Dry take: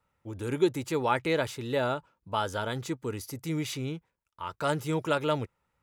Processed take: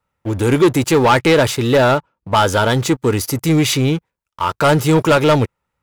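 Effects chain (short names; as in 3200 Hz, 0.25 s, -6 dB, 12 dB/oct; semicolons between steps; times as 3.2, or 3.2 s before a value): 1.91–2.35 high shelf 4700 Hz -11 dB; sample leveller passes 3; gain +7.5 dB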